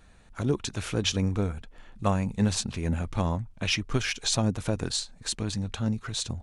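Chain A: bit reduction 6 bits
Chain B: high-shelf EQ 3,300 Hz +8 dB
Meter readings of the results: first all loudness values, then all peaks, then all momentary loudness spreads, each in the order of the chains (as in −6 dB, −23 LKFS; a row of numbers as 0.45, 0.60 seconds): −28.5, −26.5 LKFS; −12.0, −8.0 dBFS; 5, 7 LU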